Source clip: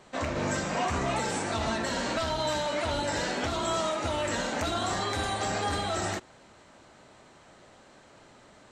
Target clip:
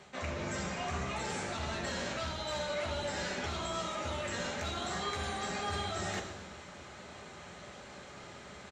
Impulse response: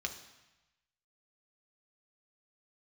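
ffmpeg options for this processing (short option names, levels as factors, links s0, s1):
-filter_complex "[0:a]areverse,acompressor=threshold=0.00891:ratio=5,areverse,asplit=8[s0][s1][s2][s3][s4][s5][s6][s7];[s1]adelay=125,afreqshift=-90,volume=0.178[s8];[s2]adelay=250,afreqshift=-180,volume=0.114[s9];[s3]adelay=375,afreqshift=-270,volume=0.0724[s10];[s4]adelay=500,afreqshift=-360,volume=0.0468[s11];[s5]adelay=625,afreqshift=-450,volume=0.0299[s12];[s6]adelay=750,afreqshift=-540,volume=0.0191[s13];[s7]adelay=875,afreqshift=-630,volume=0.0122[s14];[s0][s8][s9][s10][s11][s12][s13][s14]amix=inputs=8:normalize=0[s15];[1:a]atrim=start_sample=2205[s16];[s15][s16]afir=irnorm=-1:irlink=0,volume=1.78"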